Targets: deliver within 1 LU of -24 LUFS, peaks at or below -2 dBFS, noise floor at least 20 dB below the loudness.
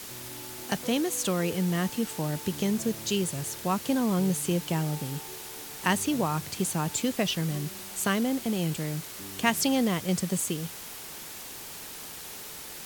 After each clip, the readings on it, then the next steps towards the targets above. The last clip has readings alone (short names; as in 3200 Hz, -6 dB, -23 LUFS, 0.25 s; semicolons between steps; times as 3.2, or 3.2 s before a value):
noise floor -42 dBFS; noise floor target -50 dBFS; loudness -29.5 LUFS; peak -8.0 dBFS; loudness target -24.0 LUFS
-> noise print and reduce 8 dB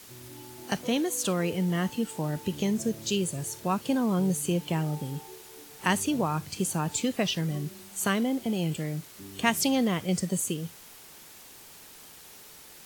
noise floor -50 dBFS; loudness -29.0 LUFS; peak -8.0 dBFS; loudness target -24.0 LUFS
-> gain +5 dB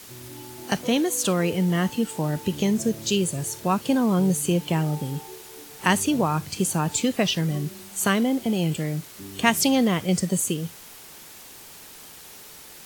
loudness -24.0 LUFS; peak -3.0 dBFS; noise floor -45 dBFS